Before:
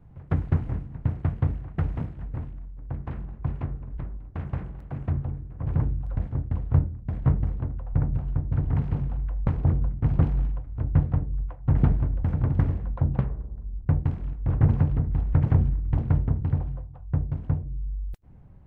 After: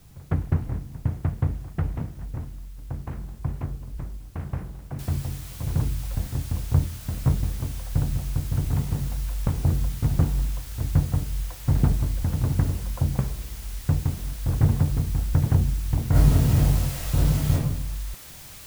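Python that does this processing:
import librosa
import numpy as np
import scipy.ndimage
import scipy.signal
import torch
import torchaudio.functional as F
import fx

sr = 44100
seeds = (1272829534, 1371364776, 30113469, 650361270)

y = fx.noise_floor_step(x, sr, seeds[0], at_s=4.99, before_db=-60, after_db=-44, tilt_db=0.0)
y = fx.reverb_throw(y, sr, start_s=16.1, length_s=1.42, rt60_s=0.8, drr_db=-8.5)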